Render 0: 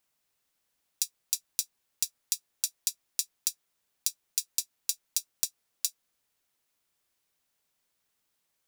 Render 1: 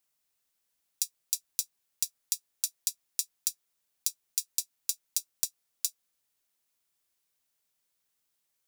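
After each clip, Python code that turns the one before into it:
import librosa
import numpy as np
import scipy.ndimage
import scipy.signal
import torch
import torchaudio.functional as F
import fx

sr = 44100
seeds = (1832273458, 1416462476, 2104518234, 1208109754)

y = fx.high_shelf(x, sr, hz=4100.0, db=6.0)
y = y * 10.0 ** (-5.5 / 20.0)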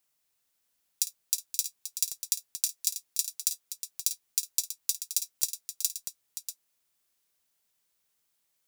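y = fx.echo_multitap(x, sr, ms=(53, 525, 640), db=(-14.5, -11.5, -10.5))
y = y * 10.0 ** (2.0 / 20.0)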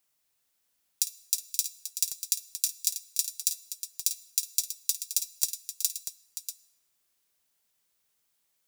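y = fx.rev_plate(x, sr, seeds[0], rt60_s=1.1, hf_ratio=0.8, predelay_ms=0, drr_db=17.5)
y = y * 10.0 ** (1.0 / 20.0)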